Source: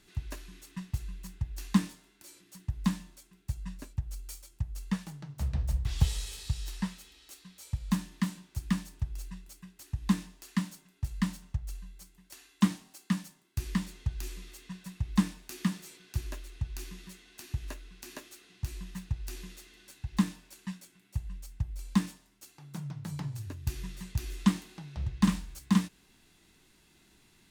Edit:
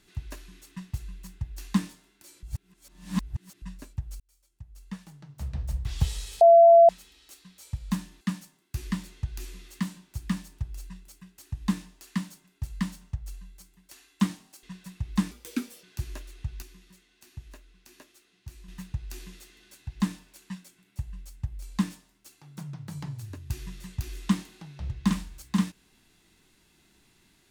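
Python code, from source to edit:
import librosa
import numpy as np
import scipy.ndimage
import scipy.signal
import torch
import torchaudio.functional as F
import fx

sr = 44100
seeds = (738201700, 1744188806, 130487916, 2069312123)

y = fx.edit(x, sr, fx.reverse_span(start_s=2.43, length_s=1.19),
    fx.fade_in_span(start_s=4.2, length_s=1.68),
    fx.bleep(start_s=6.41, length_s=0.48, hz=676.0, db=-10.5),
    fx.move(start_s=13.04, length_s=1.59, to_s=8.21),
    fx.speed_span(start_s=15.31, length_s=0.69, speed=1.32),
    fx.clip_gain(start_s=16.79, length_s=2.06, db=-8.0), tone=tone)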